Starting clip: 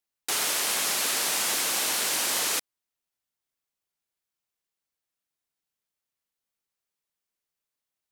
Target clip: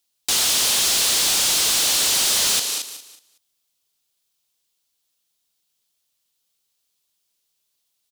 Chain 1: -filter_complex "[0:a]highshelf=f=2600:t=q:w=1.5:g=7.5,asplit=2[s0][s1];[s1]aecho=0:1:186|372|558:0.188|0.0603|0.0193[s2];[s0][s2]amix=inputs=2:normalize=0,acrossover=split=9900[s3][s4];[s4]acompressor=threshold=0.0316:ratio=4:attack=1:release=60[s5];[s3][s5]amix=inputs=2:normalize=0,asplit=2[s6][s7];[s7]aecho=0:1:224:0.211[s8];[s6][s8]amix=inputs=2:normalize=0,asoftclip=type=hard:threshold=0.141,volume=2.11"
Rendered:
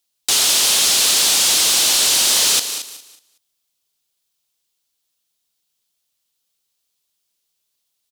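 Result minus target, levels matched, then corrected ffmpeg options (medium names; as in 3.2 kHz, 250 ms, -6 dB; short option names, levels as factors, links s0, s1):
hard clipper: distortion -7 dB
-filter_complex "[0:a]highshelf=f=2600:t=q:w=1.5:g=7.5,asplit=2[s0][s1];[s1]aecho=0:1:186|372|558:0.188|0.0603|0.0193[s2];[s0][s2]amix=inputs=2:normalize=0,acrossover=split=9900[s3][s4];[s4]acompressor=threshold=0.0316:ratio=4:attack=1:release=60[s5];[s3][s5]amix=inputs=2:normalize=0,asplit=2[s6][s7];[s7]aecho=0:1:224:0.211[s8];[s6][s8]amix=inputs=2:normalize=0,asoftclip=type=hard:threshold=0.0668,volume=2.11"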